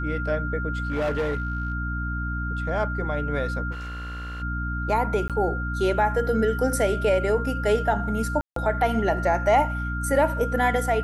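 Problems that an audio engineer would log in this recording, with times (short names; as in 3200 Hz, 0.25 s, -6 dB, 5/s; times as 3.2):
hum 60 Hz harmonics 5 -29 dBFS
tone 1400 Hz -31 dBFS
0.83–1.74 clipped -21.5 dBFS
3.71–4.43 clipped -31.5 dBFS
5.28–5.3 gap 17 ms
8.41–8.56 gap 0.153 s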